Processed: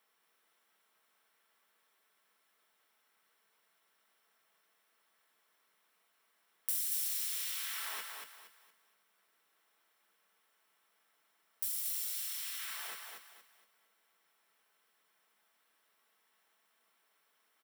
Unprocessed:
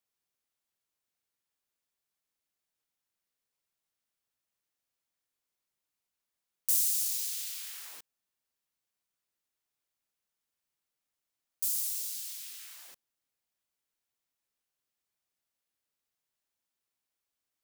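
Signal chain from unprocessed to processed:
high-pass filter 200 Hz
low-shelf EQ 260 Hz −11 dB
downward compressor 2 to 1, threshold −55 dBFS, peak gain reduction 17 dB
repeating echo 233 ms, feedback 33%, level −4.5 dB
convolution reverb RT60 0.15 s, pre-delay 3 ms, DRR 7.5 dB
level +8.5 dB

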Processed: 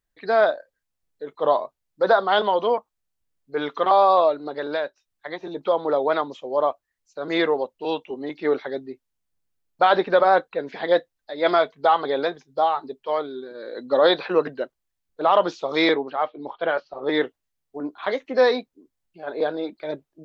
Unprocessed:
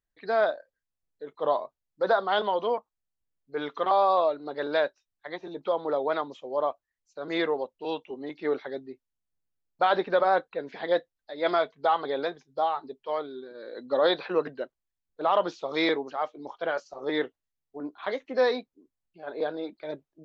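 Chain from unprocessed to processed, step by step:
0:04.47–0:05.41: downward compressor 2 to 1, threshold −34 dBFS, peak gain reduction 8 dB
0:15.94–0:17.09: Butterworth low-pass 4,100 Hz 36 dB per octave
level +6 dB

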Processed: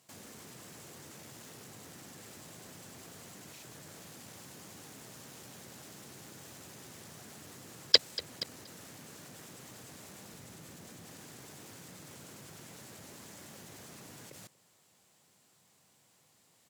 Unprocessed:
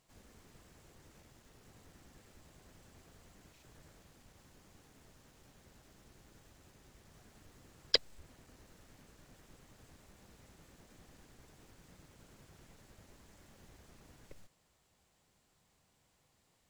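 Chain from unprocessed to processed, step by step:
0:10.32–0:11.05: low-shelf EQ 160 Hz +7.5 dB
high-pass filter 110 Hz 24 dB per octave
parametric band 12,000 Hz +6.5 dB 2 octaves
repeating echo 237 ms, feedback 35%, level −20.5 dB
output level in coarse steps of 17 dB
level +17 dB

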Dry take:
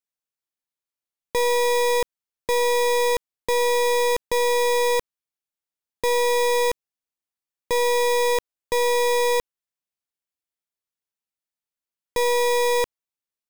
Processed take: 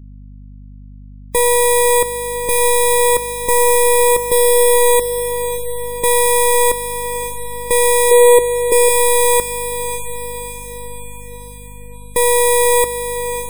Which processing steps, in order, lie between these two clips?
high shelf with overshoot 7,200 Hz +8 dB, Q 3
on a send: feedback delay with all-pass diffusion 574 ms, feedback 58%, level −9.5 dB
on the sum: mains hum 50 Hz, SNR 21 dB
0:08.11–0:08.89: parametric band 410 Hz +10.5 dB 0.79 octaves
gate on every frequency bin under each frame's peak −30 dB strong
level +6.5 dB

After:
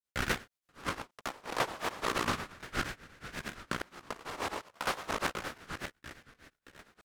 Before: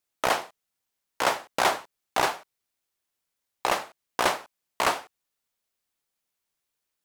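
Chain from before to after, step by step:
feedback delay that plays each chunk backwards 314 ms, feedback 62%, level −1 dB
granular cloud 156 ms, grains 8.5 per second, pitch spread up and down by 3 semitones
ring modulator whose carrier an LFO sweeps 500 Hz, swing 55%, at 0.32 Hz
level −4.5 dB

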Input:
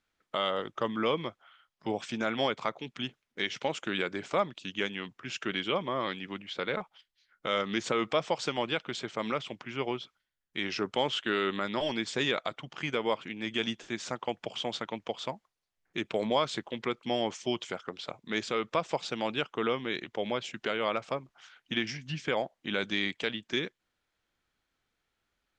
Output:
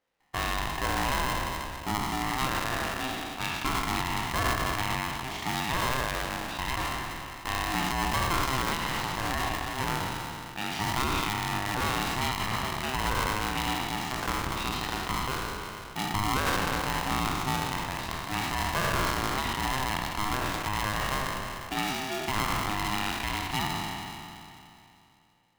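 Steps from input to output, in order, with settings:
peak hold with a decay on every bin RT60 2.73 s
high-shelf EQ 3,000 Hz −11.5 dB
brickwall limiter −17.5 dBFS, peak gain reduction 7 dB
ring modulator with a square carrier 520 Hz

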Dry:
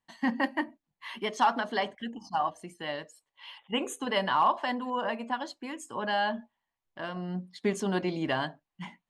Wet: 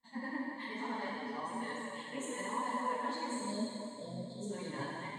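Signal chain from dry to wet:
time-frequency box erased 0:05.68–0:07.89, 740–3,200 Hz
reversed playback
downward compressor 20 to 1, threshold −36 dBFS, peak gain reduction 18 dB
reversed playback
dense smooth reverb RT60 4.4 s, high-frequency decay 0.95×, DRR −7.5 dB
flanger 0.65 Hz, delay 3.8 ms, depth 3.5 ms, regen −3%
time stretch by phase vocoder 0.57×
EQ curve with evenly spaced ripples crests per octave 1, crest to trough 13 dB
on a send: delay that swaps between a low-pass and a high-pass 242 ms, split 1,300 Hz, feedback 52%, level −12 dB
on the sum: level −2 dB

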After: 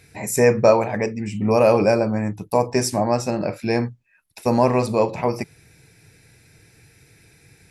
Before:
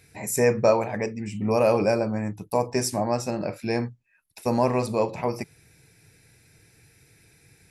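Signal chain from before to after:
high-shelf EQ 8,900 Hz −5 dB
level +5 dB

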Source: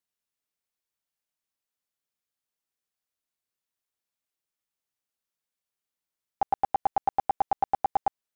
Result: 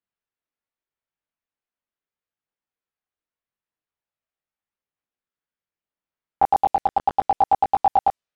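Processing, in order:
transient designer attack +7 dB, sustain +3 dB
multi-voice chorus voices 2, 0.4 Hz, delay 21 ms, depth 1.8 ms
low-pass that shuts in the quiet parts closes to 2,400 Hz, open at −18.5 dBFS
level +4 dB

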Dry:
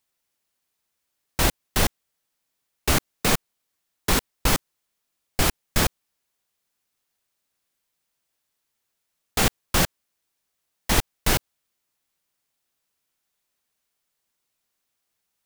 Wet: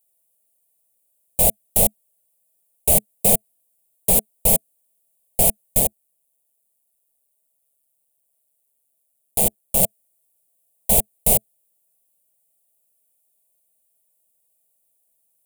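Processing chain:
drawn EQ curve 120 Hz 0 dB, 210 Hz +6 dB, 300 Hz −13 dB, 430 Hz +5 dB, 660 Hz +11 dB, 1,500 Hz −28 dB, 2,300 Hz −5 dB, 3,300 Hz −4 dB, 5,500 Hz −7 dB, 9,000 Hz +15 dB
0:05.79–0:09.83: amplitude modulation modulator 140 Hz, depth 45%
level −2.5 dB

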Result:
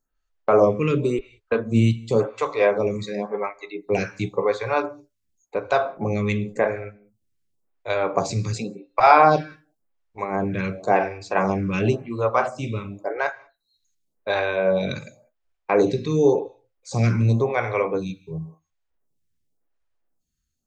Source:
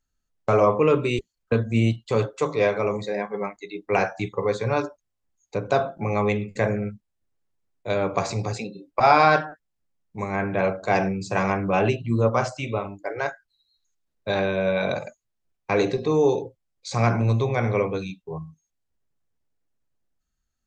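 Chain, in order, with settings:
on a send at −21 dB: convolution reverb, pre-delay 3 ms
on the sum: phaser with staggered stages 0.92 Hz
level +4 dB

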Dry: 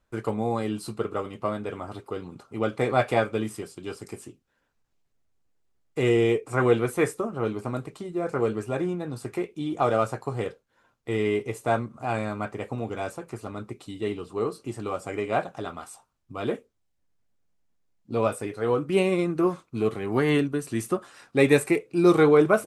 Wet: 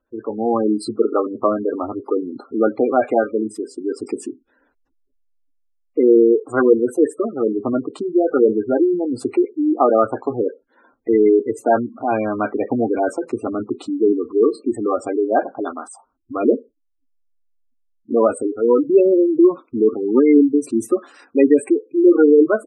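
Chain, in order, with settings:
low-pass filter 10,000 Hz 12 dB per octave
low shelf with overshoot 210 Hz −7 dB, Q 3
automatic gain control gain up to 12.5 dB
0:09.28–0:11.53: dynamic equaliser 7,100 Hz, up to −6 dB, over −48 dBFS, Q 1.3
gate on every frequency bin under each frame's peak −15 dB strong

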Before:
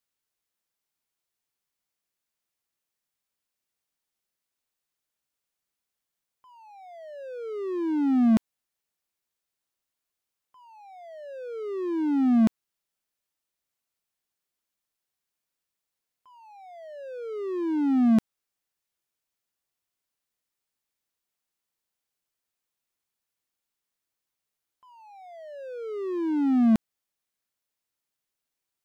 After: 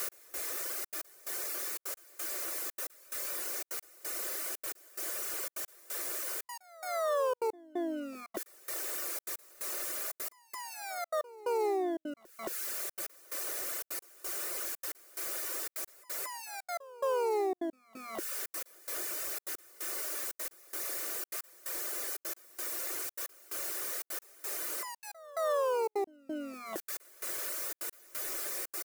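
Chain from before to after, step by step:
converter with a step at zero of −29 dBFS
reverb reduction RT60 0.71 s
low shelf with overshoot 250 Hz −12 dB, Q 3
comb filter 3.4 ms, depth 36%
leveller curve on the samples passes 1
downward compressor 12 to 1, threshold −26 dBFS, peak gain reduction 10 dB
phaser with its sweep stopped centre 880 Hz, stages 6
pitch-shifted copies added −3 semitones −16 dB, +12 semitones −6 dB
gate pattern "x...xxxxxx." 178 BPM −60 dB
echo ahead of the sound 221 ms −20 dB
level −2.5 dB

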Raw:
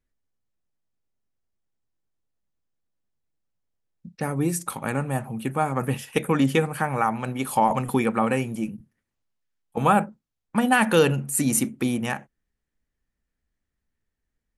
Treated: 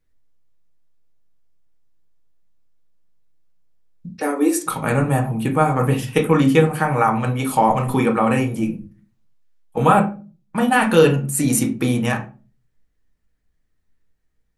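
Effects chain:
0:04.09–0:04.66: Butterworth high-pass 250 Hz 72 dB per octave
in parallel at +1 dB: speech leveller 0.5 s
on the sum: convolution reverb RT60 0.35 s, pre-delay 6 ms, DRR 1.5 dB
level −4 dB

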